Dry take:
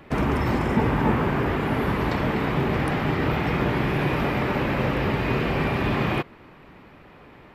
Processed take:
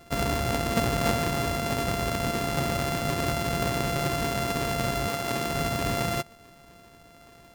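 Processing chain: sample sorter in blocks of 64 samples; 5.07–5.53 HPF 310 Hz -> 130 Hz 6 dB/oct; gain -4 dB

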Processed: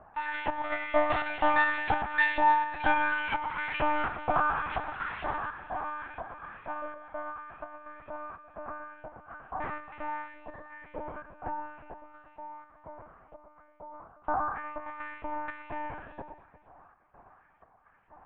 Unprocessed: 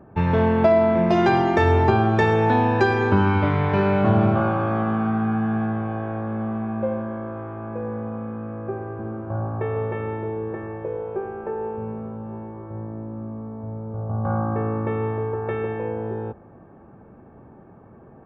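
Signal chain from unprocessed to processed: 4.71–5.38 minimum comb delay 2.9 ms; in parallel at -4.5 dB: soft clip -13.5 dBFS, distortion -16 dB; on the sum: LFO high-pass saw up 2.1 Hz 680–2700 Hz; chopper 1.4 Hz, depth 65%, duty 70%; on a send: echo with dull and thin repeats by turns 0.117 s, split 1200 Hz, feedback 61%, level -8 dB; on the sum: monotone LPC vocoder at 8 kHz 300 Hz; gain -8.5 dB

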